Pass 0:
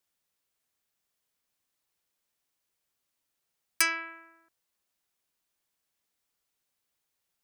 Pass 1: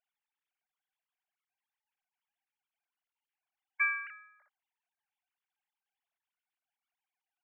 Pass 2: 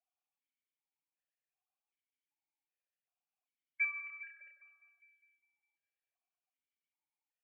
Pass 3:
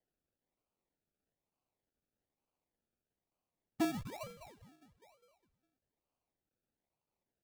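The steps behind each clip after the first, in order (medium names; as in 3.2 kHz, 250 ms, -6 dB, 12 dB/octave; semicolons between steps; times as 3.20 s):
formants replaced by sine waves; trim -3 dB
two-band feedback delay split 2 kHz, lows 99 ms, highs 203 ms, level -6 dB; stepped vowel filter 2.6 Hz; trim +4.5 dB
decimation with a swept rate 34×, swing 60% 1.1 Hz; feedback echo behind a high-pass 84 ms, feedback 60%, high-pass 1.7 kHz, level -18.5 dB; transformer saturation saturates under 330 Hz; trim +2.5 dB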